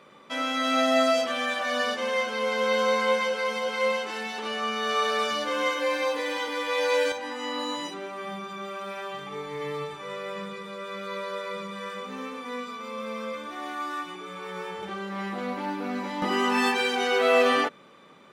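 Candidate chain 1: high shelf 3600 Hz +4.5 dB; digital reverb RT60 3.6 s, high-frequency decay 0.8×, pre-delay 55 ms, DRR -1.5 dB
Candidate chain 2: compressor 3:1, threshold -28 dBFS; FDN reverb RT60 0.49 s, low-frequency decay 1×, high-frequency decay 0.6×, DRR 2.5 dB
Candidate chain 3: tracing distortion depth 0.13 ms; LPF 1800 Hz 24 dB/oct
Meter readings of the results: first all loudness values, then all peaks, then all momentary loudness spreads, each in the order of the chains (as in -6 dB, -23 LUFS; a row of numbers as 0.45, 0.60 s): -24.0, -29.0, -29.0 LUFS; -7.5, -14.0, -10.5 dBFS; 13, 9, 13 LU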